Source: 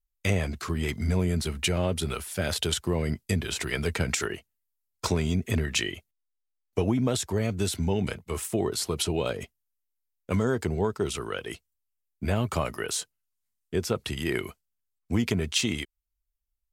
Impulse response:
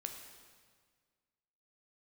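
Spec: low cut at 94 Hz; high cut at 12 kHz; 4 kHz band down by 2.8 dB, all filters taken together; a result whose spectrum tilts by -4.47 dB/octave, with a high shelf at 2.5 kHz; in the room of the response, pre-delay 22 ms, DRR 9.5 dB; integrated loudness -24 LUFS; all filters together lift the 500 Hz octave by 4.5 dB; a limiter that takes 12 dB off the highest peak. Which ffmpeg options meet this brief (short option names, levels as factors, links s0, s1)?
-filter_complex "[0:a]highpass=94,lowpass=12000,equalizer=f=500:t=o:g=5.5,highshelf=f=2500:g=5.5,equalizer=f=4000:t=o:g=-9,alimiter=limit=0.0794:level=0:latency=1,asplit=2[s0][s1];[1:a]atrim=start_sample=2205,adelay=22[s2];[s1][s2]afir=irnorm=-1:irlink=0,volume=0.422[s3];[s0][s3]amix=inputs=2:normalize=0,volume=2.66"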